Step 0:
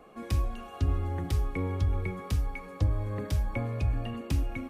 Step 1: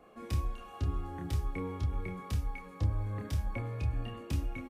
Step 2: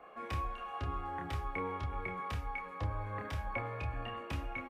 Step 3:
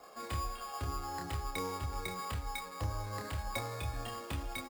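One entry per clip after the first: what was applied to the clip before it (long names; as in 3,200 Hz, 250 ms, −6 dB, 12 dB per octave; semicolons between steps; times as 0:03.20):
double-tracking delay 28 ms −3.5 dB; level −6 dB
three-way crossover with the lows and the highs turned down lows −15 dB, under 570 Hz, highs −17 dB, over 2,800 Hz; level +8 dB
sample-rate reduction 6,000 Hz, jitter 0%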